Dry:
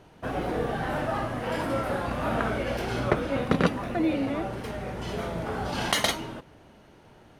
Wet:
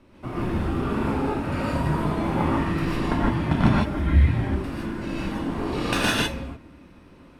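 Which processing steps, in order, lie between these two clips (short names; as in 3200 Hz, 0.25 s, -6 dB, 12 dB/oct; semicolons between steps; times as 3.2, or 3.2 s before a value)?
high shelf 4700 Hz -5.5 dB; non-linear reverb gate 0.18 s rising, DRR -5 dB; frequency shift -390 Hz; notch 6100 Hz, Q 18; gain -1.5 dB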